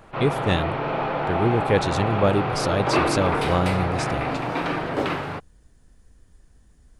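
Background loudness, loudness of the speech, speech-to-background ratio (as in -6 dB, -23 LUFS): -25.5 LUFS, -25.0 LUFS, 0.5 dB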